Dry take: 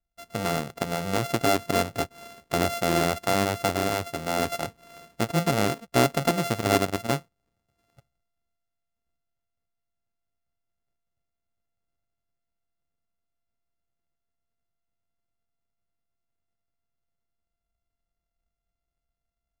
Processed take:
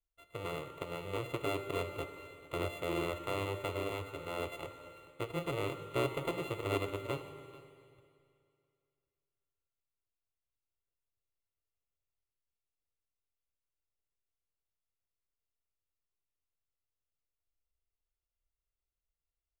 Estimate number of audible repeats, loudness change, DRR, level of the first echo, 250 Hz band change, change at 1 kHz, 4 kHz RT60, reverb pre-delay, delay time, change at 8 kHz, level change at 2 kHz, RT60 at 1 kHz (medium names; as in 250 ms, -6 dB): 1, -12.0 dB, 7.5 dB, -19.5 dB, -14.0 dB, -14.5 dB, 2.3 s, 15 ms, 439 ms, -20.5 dB, -12.0 dB, 2.3 s